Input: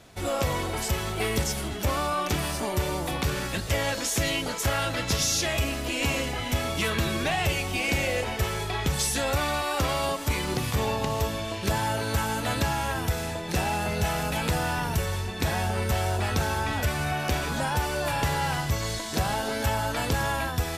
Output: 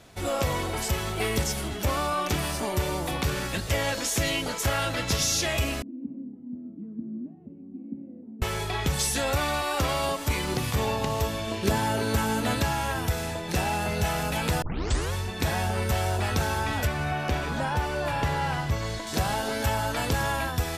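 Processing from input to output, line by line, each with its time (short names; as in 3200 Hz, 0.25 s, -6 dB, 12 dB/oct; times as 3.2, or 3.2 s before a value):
5.82–8.42 Butterworth band-pass 240 Hz, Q 2.9
11.47–12.56 small resonant body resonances 240/390 Hz, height 8 dB
14.62 tape start 0.51 s
16.87–19.07 high shelf 5000 Hz -11.5 dB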